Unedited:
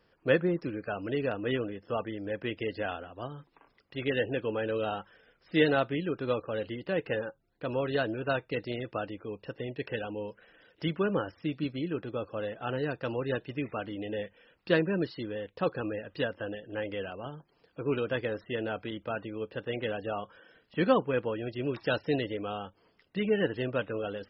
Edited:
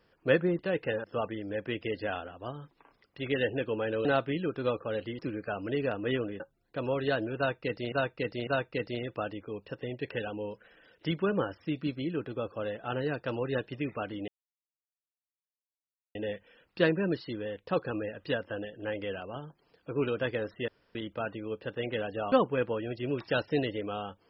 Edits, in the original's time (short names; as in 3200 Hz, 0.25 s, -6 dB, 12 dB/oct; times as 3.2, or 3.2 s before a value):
0.59–1.8 swap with 6.82–7.27
4.81–5.68 cut
8.24–8.79 loop, 3 plays
14.05 insert silence 1.87 s
18.58–18.85 room tone
20.22–20.88 cut